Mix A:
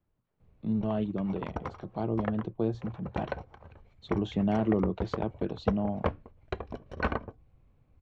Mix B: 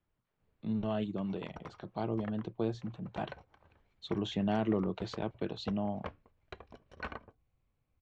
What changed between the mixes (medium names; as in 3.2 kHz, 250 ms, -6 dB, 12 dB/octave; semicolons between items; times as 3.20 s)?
background -10.5 dB; master: add tilt shelf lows -5 dB, about 1.1 kHz